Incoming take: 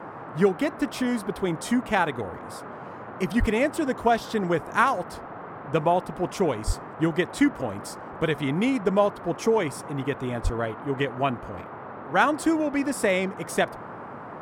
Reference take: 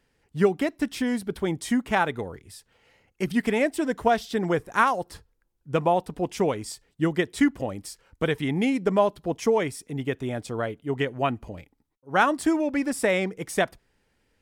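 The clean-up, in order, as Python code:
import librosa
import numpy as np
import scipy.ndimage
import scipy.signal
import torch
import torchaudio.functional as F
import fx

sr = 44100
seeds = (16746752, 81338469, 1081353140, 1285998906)

y = fx.highpass(x, sr, hz=140.0, slope=24, at=(3.39, 3.51), fade=0.02)
y = fx.highpass(y, sr, hz=140.0, slope=24, at=(6.66, 6.78), fade=0.02)
y = fx.highpass(y, sr, hz=140.0, slope=24, at=(10.43, 10.55), fade=0.02)
y = fx.noise_reduce(y, sr, print_start_s=2.58, print_end_s=3.08, reduce_db=29.0)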